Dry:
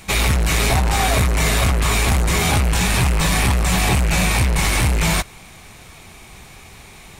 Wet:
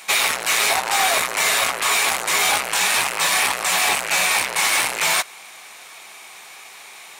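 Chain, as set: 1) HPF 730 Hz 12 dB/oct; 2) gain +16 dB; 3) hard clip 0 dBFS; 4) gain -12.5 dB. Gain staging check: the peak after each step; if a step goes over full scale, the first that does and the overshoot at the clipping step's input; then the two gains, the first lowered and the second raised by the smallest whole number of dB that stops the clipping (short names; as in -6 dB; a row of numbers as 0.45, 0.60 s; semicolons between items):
-8.0, +8.0, 0.0, -12.5 dBFS; step 2, 8.0 dB; step 2 +8 dB, step 4 -4.5 dB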